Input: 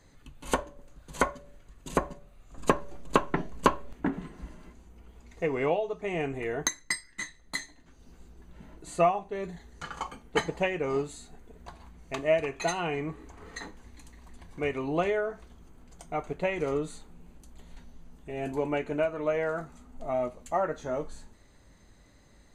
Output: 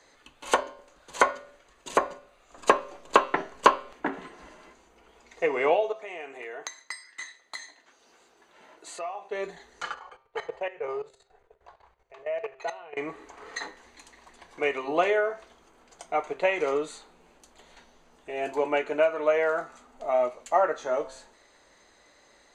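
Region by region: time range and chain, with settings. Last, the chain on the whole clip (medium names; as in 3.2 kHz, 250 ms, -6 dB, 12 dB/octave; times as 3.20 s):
5.92–9.31 s: high-pass 450 Hz 6 dB/octave + compression 3:1, threshold -42 dBFS
9.94–12.97 s: FFT filter 130 Hz 0 dB, 260 Hz -23 dB, 400 Hz -2 dB, 1.9 kHz -7 dB, 8.5 kHz -16 dB + level held to a coarse grid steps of 17 dB
whole clip: three-band isolator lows -23 dB, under 370 Hz, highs -13 dB, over 8 kHz; de-hum 132 Hz, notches 39; trim +6.5 dB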